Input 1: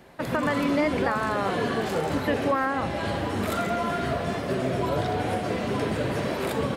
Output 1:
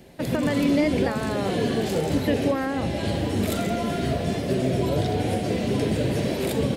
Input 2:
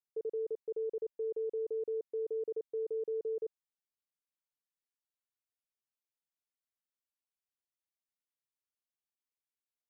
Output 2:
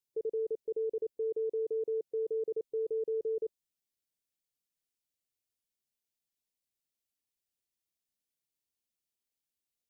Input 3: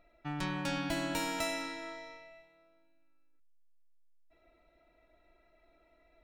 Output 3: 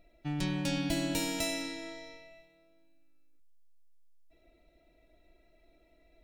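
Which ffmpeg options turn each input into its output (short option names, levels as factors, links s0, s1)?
-af "equalizer=f=1200:t=o:w=1.4:g=-14.5,volume=1.88" -ar 44100 -c:a aac -b:a 192k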